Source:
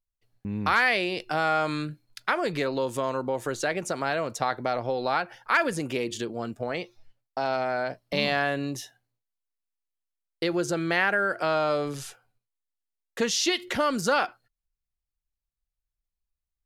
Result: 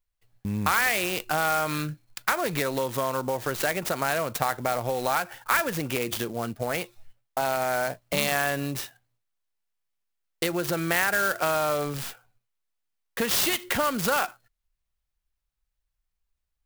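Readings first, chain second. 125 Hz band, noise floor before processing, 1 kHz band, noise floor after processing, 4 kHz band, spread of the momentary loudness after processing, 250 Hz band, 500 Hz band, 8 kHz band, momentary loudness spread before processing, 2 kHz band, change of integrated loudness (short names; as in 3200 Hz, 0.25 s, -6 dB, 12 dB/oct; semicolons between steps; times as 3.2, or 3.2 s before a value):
+2.5 dB, under -85 dBFS, +0.5 dB, -81 dBFS, +0.5 dB, 9 LU, -1.0 dB, -0.5 dB, +4.5 dB, 10 LU, 0.0 dB, +0.5 dB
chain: compressor 3:1, threshold -26 dBFS, peak gain reduction 7 dB; bell 330 Hz -6 dB 1.7 oct; clock jitter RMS 0.041 ms; gain +6 dB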